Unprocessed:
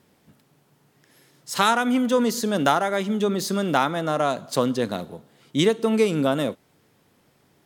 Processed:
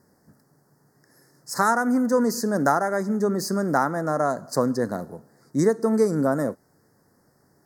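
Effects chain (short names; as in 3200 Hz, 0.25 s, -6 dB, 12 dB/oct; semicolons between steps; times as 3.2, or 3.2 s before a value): Chebyshev band-stop 1800–4800 Hz, order 3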